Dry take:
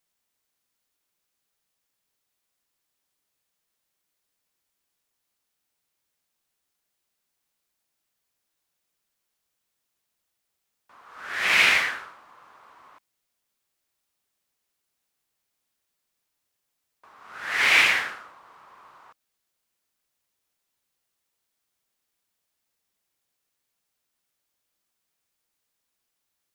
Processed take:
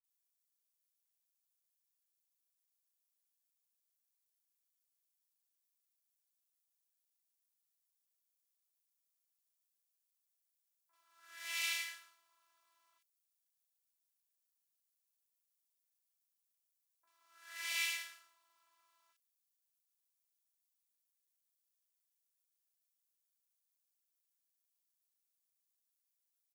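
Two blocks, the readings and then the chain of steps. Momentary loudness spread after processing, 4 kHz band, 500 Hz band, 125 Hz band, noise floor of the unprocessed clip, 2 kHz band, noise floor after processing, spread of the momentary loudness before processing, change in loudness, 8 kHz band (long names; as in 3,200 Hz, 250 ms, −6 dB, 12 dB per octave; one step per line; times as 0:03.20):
17 LU, −15.5 dB, −28.5 dB, can't be measured, −80 dBFS, −21.0 dB, below −85 dBFS, 18 LU, −18.5 dB, −9.0 dB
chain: first difference
multiband delay without the direct sound lows, highs 40 ms, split 1,700 Hz
phases set to zero 334 Hz
level −6.5 dB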